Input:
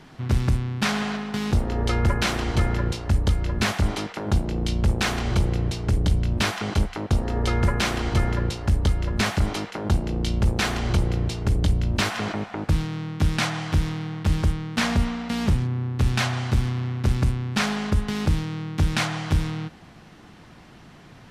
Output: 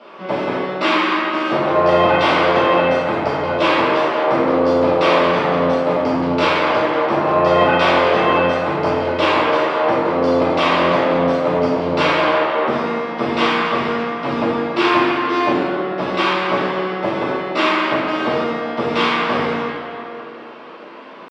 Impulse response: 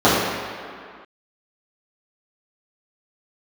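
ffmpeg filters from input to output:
-filter_complex "[0:a]asetrate=66075,aresample=44100,atempo=0.66742,highpass=670,lowpass=3.1k[a];[1:a]atrim=start_sample=2205,asetrate=35721,aresample=44100[b];[a][b]afir=irnorm=-1:irlink=0,volume=-12dB"

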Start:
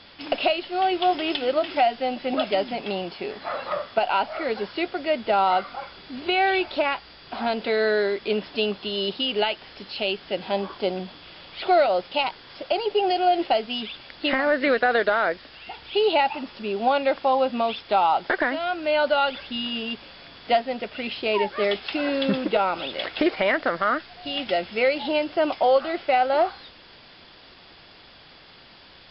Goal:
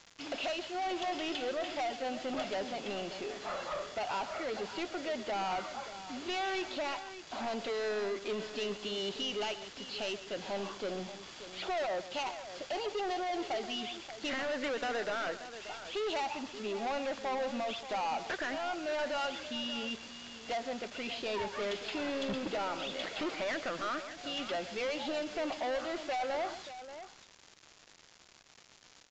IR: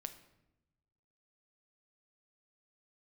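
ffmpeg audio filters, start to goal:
-af "lowshelf=f=70:g=-9.5,aresample=16000,acrusher=bits=6:mix=0:aa=0.000001,aresample=44100,asoftclip=type=tanh:threshold=-25.5dB,aecho=1:1:131|582:0.211|0.237,volume=-6.5dB" -ar 16000 -c:a pcm_mulaw

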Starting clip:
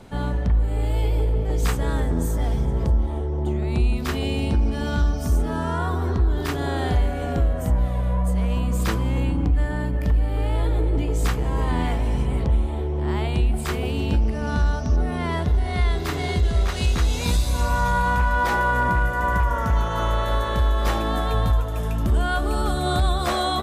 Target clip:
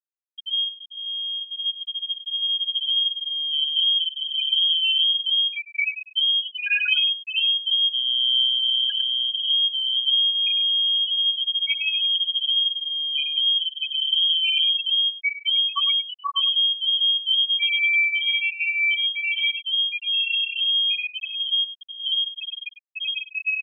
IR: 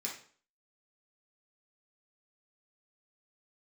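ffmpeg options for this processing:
-filter_complex "[0:a]lowpass=f=2.8k:t=q:w=0.5098,lowpass=f=2.8k:t=q:w=0.6013,lowpass=f=2.8k:t=q:w=0.9,lowpass=f=2.8k:t=q:w=2.563,afreqshift=-3300,dynaudnorm=f=390:g=13:m=13.5dB[a];[1:a]atrim=start_sample=2205,afade=t=out:st=0.38:d=0.01,atrim=end_sample=17199[b];[a][b]afir=irnorm=-1:irlink=0,acompressor=threshold=-17dB:ratio=2.5,asuperstop=centerf=2000:order=20:qfactor=4.3,aecho=1:1:3.6:0.6,asplit=2[c][d];[d]asetrate=35002,aresample=44100,atempo=1.25992,volume=-12dB[e];[c][e]amix=inputs=2:normalize=0,equalizer=f=140:w=0.97:g=4.5,afftfilt=real='re*gte(hypot(re,im),0.631)':imag='im*gte(hypot(re,im),0.631)':win_size=1024:overlap=0.75,aecho=1:1:101:0.211"

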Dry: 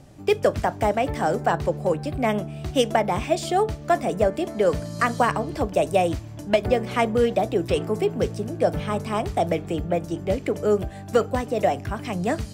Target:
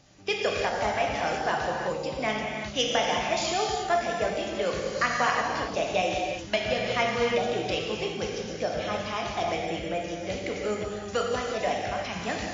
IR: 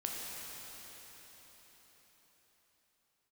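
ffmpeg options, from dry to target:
-filter_complex "[0:a]tiltshelf=f=1.1k:g=-7.5[a];[1:a]atrim=start_sample=2205,afade=t=out:st=0.43:d=0.01,atrim=end_sample=19404[b];[a][b]afir=irnorm=-1:irlink=0,volume=-3dB" -ar 16000 -c:a libmp3lame -b:a 32k

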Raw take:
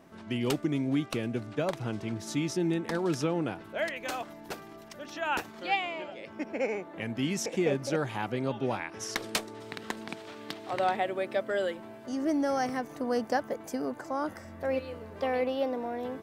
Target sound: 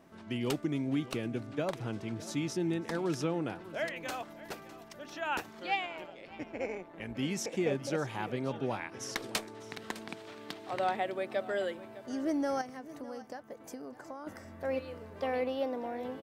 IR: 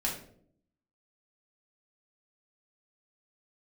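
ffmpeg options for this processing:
-filter_complex "[0:a]asettb=1/sr,asplit=3[a][b][c];[a]atrim=end=12.614[d];[b]atrim=start=12.61:end=14.27,asetpts=PTS-STARTPTS,afade=t=in:d=0.004:c=qsin,afade=t=out:st=1.656:d=0.004:c=qsin,acompressor=threshold=-38dB:ratio=6[e];[c]atrim=start=14.266[f];[d][e]acrossfade=d=0.004:c1=hsin:c2=qsin[g];[g][f]acrossfade=d=0.004:c1=qsin:c2=hsin,aecho=1:1:607:0.141,asettb=1/sr,asplit=3[h][i][j];[h]atrim=end=5.864[k];[i]atrim=start=5.86:end=7.15,asetpts=PTS-STARTPTS,afade=t=in:d=0.004:c=qsin,afade=t=out:st=1.286:d=0.004:c=qsin,tremolo=f=170:d=0.621[l];[j]atrim=start=7.146[m];[k][l]acrossfade=d=0.004:c1=hsin:c2=qsin[n];[n][m]acrossfade=d=0.004:c1=qsin:c2=hsin,volume=-3.5dB"

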